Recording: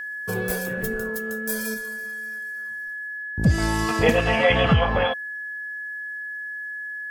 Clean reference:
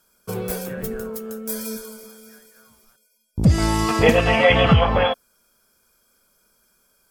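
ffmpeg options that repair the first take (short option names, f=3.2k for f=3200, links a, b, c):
-af "bandreject=f=1.7k:w=30,asetnsamples=n=441:p=0,asendcmd='1.74 volume volume 3.5dB',volume=0dB"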